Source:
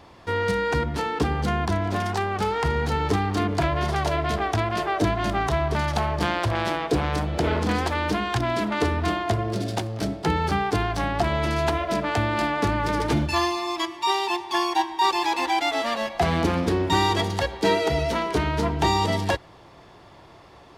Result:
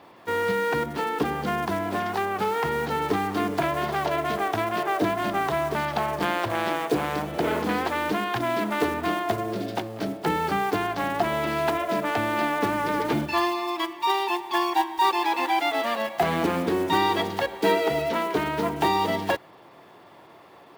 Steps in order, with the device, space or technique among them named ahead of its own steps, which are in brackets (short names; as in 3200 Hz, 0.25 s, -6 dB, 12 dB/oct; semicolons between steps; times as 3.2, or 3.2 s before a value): early digital voice recorder (BPF 200–3500 Hz; block floating point 5-bit)